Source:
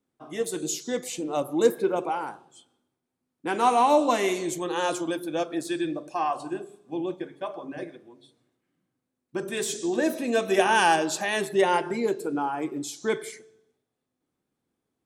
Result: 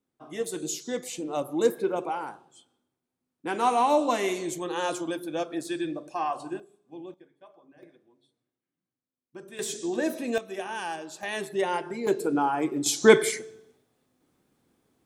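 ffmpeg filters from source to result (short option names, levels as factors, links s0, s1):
-af "asetnsamples=n=441:p=0,asendcmd='6.6 volume volume -11.5dB;7.14 volume volume -19.5dB;7.83 volume volume -13dB;9.59 volume volume -3dB;10.38 volume volume -13.5dB;11.23 volume volume -5.5dB;12.07 volume volume 3dB;12.86 volume volume 11dB',volume=0.75"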